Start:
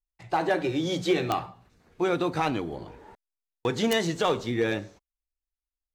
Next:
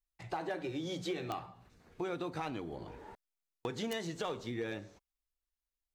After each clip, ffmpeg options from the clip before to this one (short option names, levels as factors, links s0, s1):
-af "acompressor=threshold=0.0112:ratio=2.5,volume=0.841"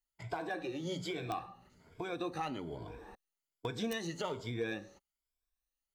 -af "afftfilt=real='re*pow(10,12/40*sin(2*PI*(1.7*log(max(b,1)*sr/1024/100)/log(2)-(1.2)*(pts-256)/sr)))':imag='im*pow(10,12/40*sin(2*PI*(1.7*log(max(b,1)*sr/1024/100)/log(2)-(1.2)*(pts-256)/sr)))':win_size=1024:overlap=0.75,volume=0.841"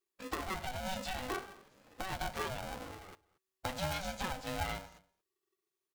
-filter_complex "[0:a]asplit=2[s0][s1];[s1]adelay=227.4,volume=0.0708,highshelf=f=4000:g=-5.12[s2];[s0][s2]amix=inputs=2:normalize=0,aeval=exprs='val(0)*sgn(sin(2*PI*380*n/s))':c=same"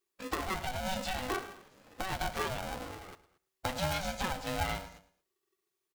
-af "aecho=1:1:109|218:0.141|0.0339,volume=1.5"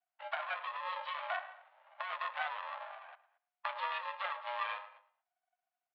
-af "adynamicsmooth=sensitivity=4:basefreq=2400,highpass=f=260:t=q:w=0.5412,highpass=f=260:t=q:w=1.307,lowpass=f=3300:t=q:w=0.5176,lowpass=f=3300:t=q:w=0.7071,lowpass=f=3300:t=q:w=1.932,afreqshift=340,volume=0.794"